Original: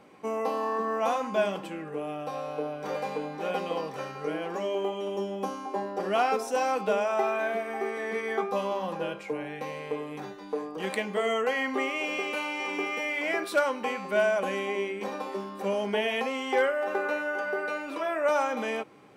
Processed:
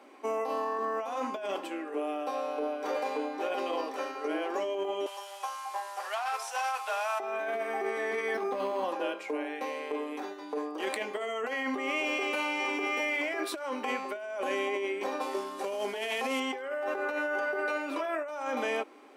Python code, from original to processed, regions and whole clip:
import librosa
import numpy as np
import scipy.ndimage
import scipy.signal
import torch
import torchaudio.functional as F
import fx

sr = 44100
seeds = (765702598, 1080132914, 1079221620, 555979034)

y = fx.chain(x, sr, fx.delta_mod(bps=64000, step_db=-42.5),
    fx.highpass(hz=820.0, slope=24), at=(5.06, 7.2))
y = fx.chain(y, sr, fx.clip_hard(threshold_db=-25.0),
    fx.bass_treble(bass_db=12, treble_db=3),
    fx.resample_linear(factor=6), at=(8.34, 8.84))
y = fx.chain(y, sr, fx.cvsd(bps=64000),
    fx.peak_eq(hz=5600.0, db=3.0, octaves=2.4), at=(15.21, 16.4))
y = scipy.signal.sosfilt(scipy.signal.ellip(4, 1.0, 40, 250.0, 'highpass', fs=sr, output='sos'), y)
y = fx.notch(y, sr, hz=480.0, q=12.0)
y = fx.over_compress(y, sr, threshold_db=-32.0, ratio=-1.0)